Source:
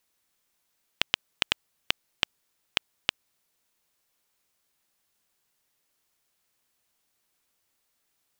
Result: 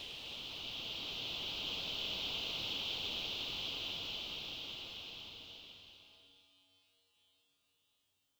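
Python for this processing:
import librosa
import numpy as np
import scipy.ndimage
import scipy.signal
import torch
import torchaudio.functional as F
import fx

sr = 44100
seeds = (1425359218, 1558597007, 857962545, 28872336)

y = fx.phaser_stages(x, sr, stages=4, low_hz=220.0, high_hz=4600.0, hz=0.99, feedback_pct=25)
y = fx.comb_fb(y, sr, f0_hz=94.0, decay_s=0.4, harmonics='odd', damping=0.0, mix_pct=50)
y = fx.paulstretch(y, sr, seeds[0], factor=17.0, window_s=0.5, from_s=2.94)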